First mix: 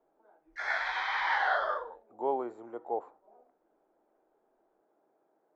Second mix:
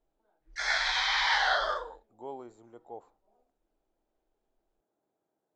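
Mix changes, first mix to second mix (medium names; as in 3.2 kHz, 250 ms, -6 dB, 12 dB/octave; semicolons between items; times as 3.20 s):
speech -11.5 dB; master: remove three-band isolator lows -16 dB, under 270 Hz, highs -19 dB, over 2.2 kHz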